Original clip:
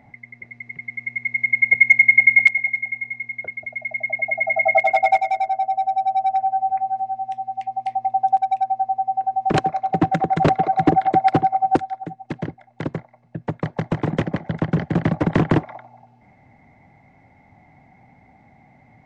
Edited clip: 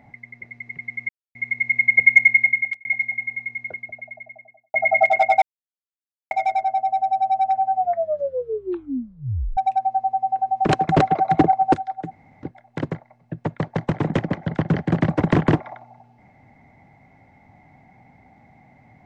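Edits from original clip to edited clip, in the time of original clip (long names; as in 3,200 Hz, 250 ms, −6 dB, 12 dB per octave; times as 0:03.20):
0:01.09: splice in silence 0.26 s
0:01.92–0:02.59: fade out
0:03.27–0:04.48: fade out and dull
0:05.16: splice in silence 0.89 s
0:06.60: tape stop 1.82 s
0:09.74–0:10.37: remove
0:11.01–0:11.56: remove
0:12.14–0:12.46: fill with room tone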